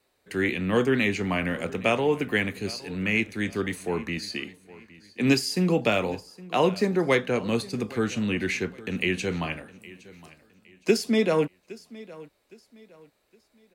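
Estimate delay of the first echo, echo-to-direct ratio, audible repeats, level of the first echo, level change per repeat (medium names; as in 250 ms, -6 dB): 814 ms, -19.5 dB, 2, -20.0 dB, -9.5 dB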